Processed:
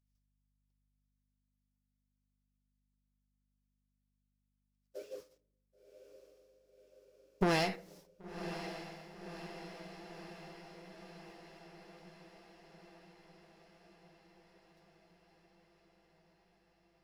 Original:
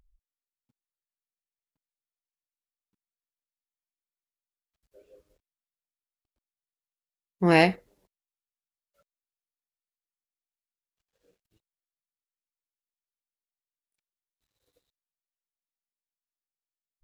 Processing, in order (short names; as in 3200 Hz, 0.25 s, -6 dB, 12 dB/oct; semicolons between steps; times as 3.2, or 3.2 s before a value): expander -56 dBFS; HPF 450 Hz 6 dB/oct; bell 5300 Hz +8.5 dB 0.58 oct; in parallel at -1.5 dB: limiter -13.5 dBFS, peak gain reduction 8 dB; on the sum: compressor 6:1, threshold -32 dBFS, peak gain reduction 18.5 dB; one-sided clip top -40.5 dBFS; hum 50 Hz, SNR 34 dB; diffused feedback echo 1.057 s, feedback 66%, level -10 dB; reverb RT60 0.70 s, pre-delay 7 ms, DRR 17.5 dB; gain +8 dB